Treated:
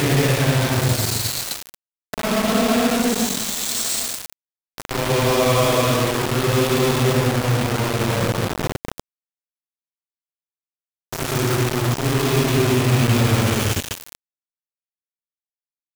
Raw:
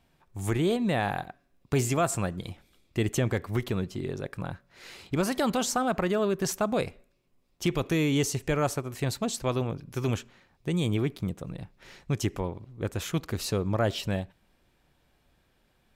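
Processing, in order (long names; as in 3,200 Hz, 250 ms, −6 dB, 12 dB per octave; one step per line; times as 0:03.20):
delay with a band-pass on its return 123 ms, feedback 62%, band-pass 940 Hz, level −21 dB
extreme stretch with random phases 12×, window 0.10 s, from 0:09.02
bit reduction 5 bits
level +8.5 dB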